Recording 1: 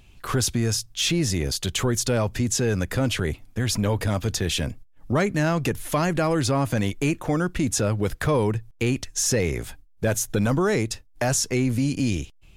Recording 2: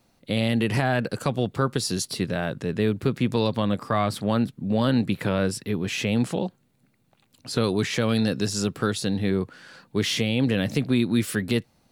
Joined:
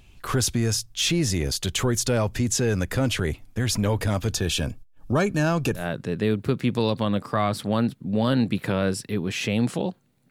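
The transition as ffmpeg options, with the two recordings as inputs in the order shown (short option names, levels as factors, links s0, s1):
-filter_complex "[0:a]asettb=1/sr,asplit=3[s0][s1][s2];[s0]atrim=end=4.334[s3];[s1]atrim=start=4.33:end=5.87,asetpts=PTS-STARTPTS,afade=t=in:d=0.004:c=qsin,afade=t=out:st=1.536:d=0.004:c=qsin,asuperstop=centerf=2000:order=8:qfactor=5.7[s4];[s2]atrim=start=5.866[s5];[s3][s4]acrossfade=d=0.004:c1=hsin:c2=qsin[s6];[s6][s5]acrossfade=d=0.004:c1=qsin:c2=hsin,apad=whole_dur=10.3,atrim=end=10.3,atrim=end=5.87,asetpts=PTS-STARTPTS[s7];[1:a]atrim=start=2.3:end=6.87,asetpts=PTS-STARTPTS[s8];[s7][s8]acrossfade=d=0.14:c1=tri:c2=tri"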